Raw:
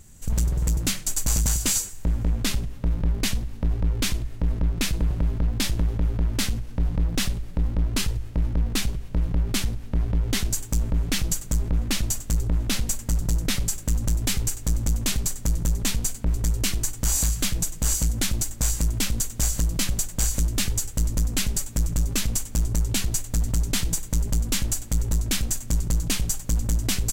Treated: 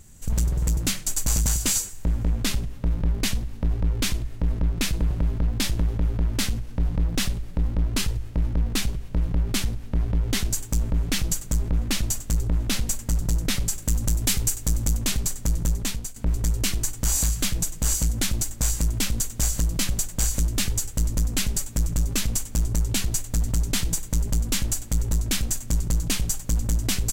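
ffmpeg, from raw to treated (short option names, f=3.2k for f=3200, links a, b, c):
-filter_complex "[0:a]asettb=1/sr,asplit=3[a][b][c];[a]atrim=end=13.824[d];[b]atrim=start=13.82:end=14.97,asetpts=PTS-STARTPTS,afade=t=in:d=0.004:c=qsin,afade=t=out:st=1.146:d=0.004:c=qsin,highshelf=f=5.3k:g=5.5[e];[c]atrim=start=14.966[f];[d][e]acrossfade=d=0.004:c1=hsin:c2=qsin[g];[g][f]acrossfade=d=0.004:c1=qsin:c2=hsin,asplit=2[h][i];[h]atrim=end=16.16,asetpts=PTS-STARTPTS,afade=t=out:st=15.7:d=0.46:silence=0.237137[j];[i]atrim=start=16.16,asetpts=PTS-STARTPTS,afade=t=in:d=0.004:c=hsin:silence=0.237137[k];[j][k]concat=n=2:v=0:a=1"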